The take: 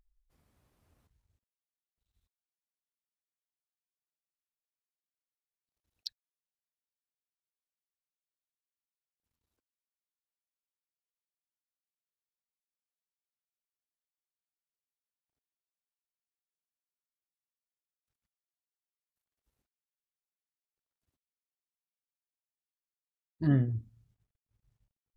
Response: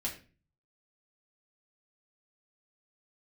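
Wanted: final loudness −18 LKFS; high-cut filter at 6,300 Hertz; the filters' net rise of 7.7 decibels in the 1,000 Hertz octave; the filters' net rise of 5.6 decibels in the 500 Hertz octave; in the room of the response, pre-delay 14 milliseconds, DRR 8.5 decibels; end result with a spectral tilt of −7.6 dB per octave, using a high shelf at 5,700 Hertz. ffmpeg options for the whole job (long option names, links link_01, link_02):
-filter_complex "[0:a]lowpass=6300,equalizer=frequency=500:width_type=o:gain=5.5,equalizer=frequency=1000:width_type=o:gain=8.5,highshelf=frequency=5700:gain=8.5,asplit=2[link_01][link_02];[1:a]atrim=start_sample=2205,adelay=14[link_03];[link_02][link_03]afir=irnorm=-1:irlink=0,volume=-10.5dB[link_04];[link_01][link_04]amix=inputs=2:normalize=0,volume=11.5dB"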